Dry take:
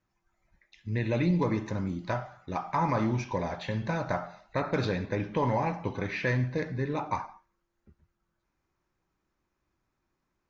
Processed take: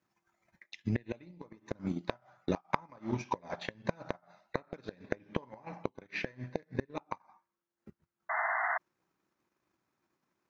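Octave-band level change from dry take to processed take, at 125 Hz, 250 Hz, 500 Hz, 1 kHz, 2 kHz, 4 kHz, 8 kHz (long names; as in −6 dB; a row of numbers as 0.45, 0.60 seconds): −11.5 dB, −8.0 dB, −7.5 dB, −6.0 dB, −1.5 dB, −5.5 dB, can't be measured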